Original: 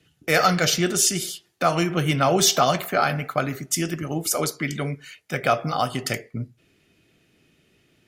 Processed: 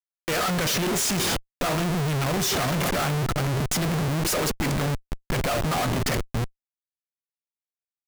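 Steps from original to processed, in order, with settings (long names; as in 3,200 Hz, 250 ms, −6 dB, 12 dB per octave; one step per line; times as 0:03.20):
0:01.79–0:04.27: parametric band 120 Hz +12 dB 1.2 octaves
comparator with hysteresis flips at −32 dBFS
level −2 dB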